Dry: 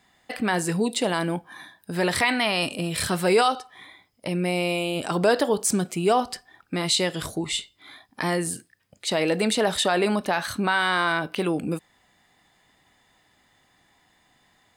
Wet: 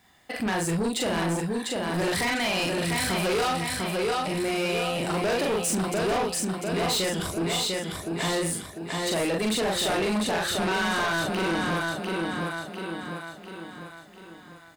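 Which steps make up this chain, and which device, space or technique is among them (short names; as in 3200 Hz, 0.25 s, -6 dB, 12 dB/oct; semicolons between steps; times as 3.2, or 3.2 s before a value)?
doubler 42 ms -2 dB; feedback echo 0.698 s, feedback 47%, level -5 dB; open-reel tape (soft clip -22.5 dBFS, distortion -8 dB; bell 74 Hz +3.5 dB; white noise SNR 43 dB)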